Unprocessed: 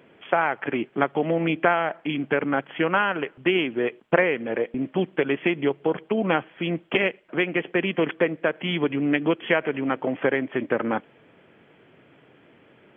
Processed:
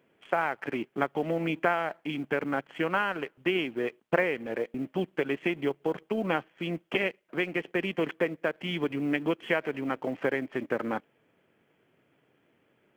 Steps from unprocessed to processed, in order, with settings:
mu-law and A-law mismatch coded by A
level −5.5 dB

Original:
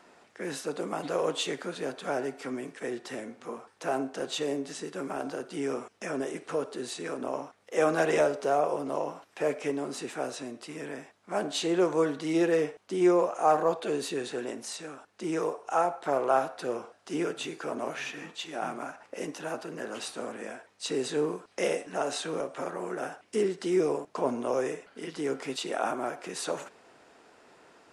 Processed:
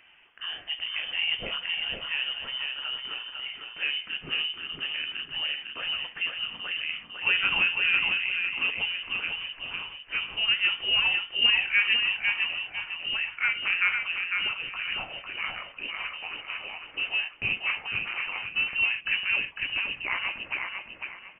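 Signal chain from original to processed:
gliding playback speed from 95% → 166%
repeating echo 502 ms, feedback 30%, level −4.5 dB
voice inversion scrambler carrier 3,300 Hz

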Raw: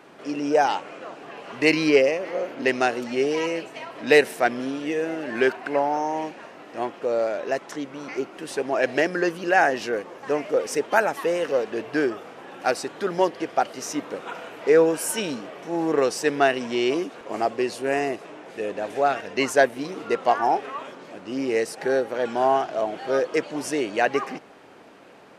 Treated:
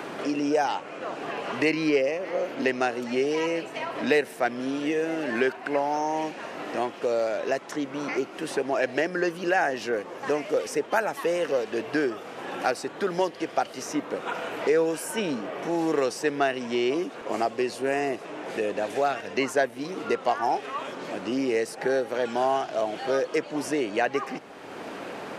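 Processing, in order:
multiband upward and downward compressor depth 70%
level −3 dB

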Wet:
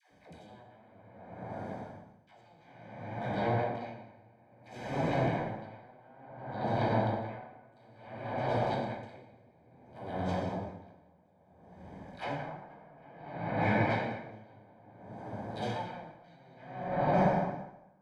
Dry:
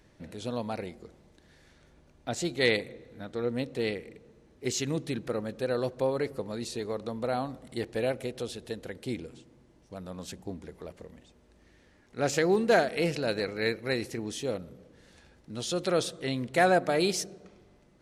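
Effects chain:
lower of the sound and its delayed copy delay 1.3 ms
high-pass filter 64 Hz 12 dB per octave
harmonic generator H 8 −9 dB, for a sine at −11.5 dBFS
high-shelf EQ 2,700 Hz −11.5 dB
brickwall limiter −22.5 dBFS, peak gain reduction 11 dB
all-pass dispersion lows, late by 111 ms, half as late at 560 Hz
treble cut that deepens with the level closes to 820 Hz, closed at −28 dBFS
notch comb filter 1,400 Hz
echo with a time of its own for lows and highs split 330 Hz, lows 759 ms, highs 205 ms, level −15 dB
dense smooth reverb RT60 3.6 s, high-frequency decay 0.45×, DRR −6 dB
tremolo with a sine in dB 0.58 Hz, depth 30 dB
level +3 dB

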